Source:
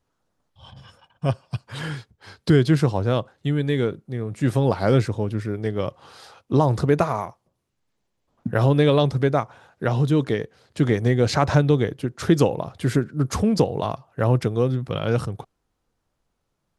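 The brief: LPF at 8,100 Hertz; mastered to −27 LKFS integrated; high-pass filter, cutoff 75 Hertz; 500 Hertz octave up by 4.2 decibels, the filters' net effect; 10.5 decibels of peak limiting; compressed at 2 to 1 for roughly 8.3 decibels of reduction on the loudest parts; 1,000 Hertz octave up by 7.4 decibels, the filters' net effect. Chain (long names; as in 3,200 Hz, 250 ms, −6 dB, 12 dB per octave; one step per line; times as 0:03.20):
high-pass filter 75 Hz
low-pass filter 8,100 Hz
parametric band 500 Hz +3 dB
parametric band 1,000 Hz +8.5 dB
downward compressor 2 to 1, threshold −25 dBFS
level +3 dB
brickwall limiter −14.5 dBFS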